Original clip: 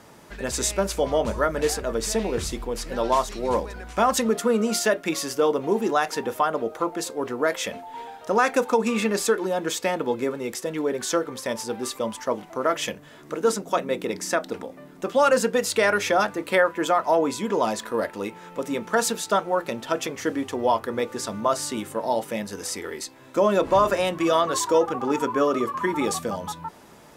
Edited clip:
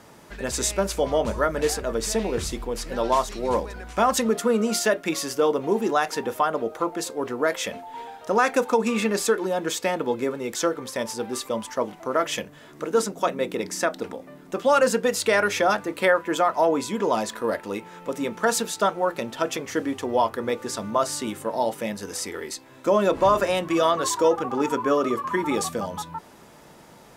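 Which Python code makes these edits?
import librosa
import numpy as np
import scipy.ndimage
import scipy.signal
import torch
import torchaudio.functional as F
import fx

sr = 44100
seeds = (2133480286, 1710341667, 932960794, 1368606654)

y = fx.edit(x, sr, fx.cut(start_s=10.56, length_s=0.5), tone=tone)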